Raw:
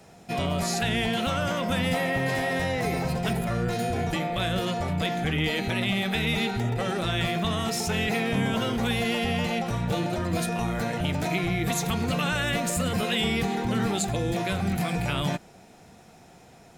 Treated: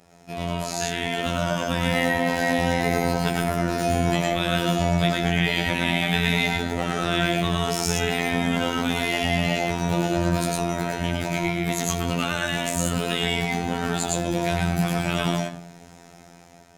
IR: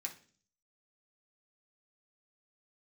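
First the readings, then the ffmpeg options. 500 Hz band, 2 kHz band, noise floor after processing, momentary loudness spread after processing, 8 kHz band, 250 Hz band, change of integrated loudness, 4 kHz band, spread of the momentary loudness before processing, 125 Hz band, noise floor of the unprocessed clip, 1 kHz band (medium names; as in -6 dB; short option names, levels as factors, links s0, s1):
+3.5 dB, +4.0 dB, -48 dBFS, 4 LU, +4.0 dB, +2.5 dB, +3.0 dB, +3.0 dB, 3 LU, +2.0 dB, -52 dBFS, +3.5 dB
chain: -filter_complex "[0:a]asplit=2[s0][s1];[1:a]atrim=start_sample=2205,asetrate=36603,aresample=44100,adelay=108[s2];[s1][s2]afir=irnorm=-1:irlink=0,volume=1.12[s3];[s0][s3]amix=inputs=2:normalize=0,afftfilt=real='hypot(re,im)*cos(PI*b)':imag='0':win_size=2048:overlap=0.75,dynaudnorm=f=520:g=5:m=3.76,volume=0.891"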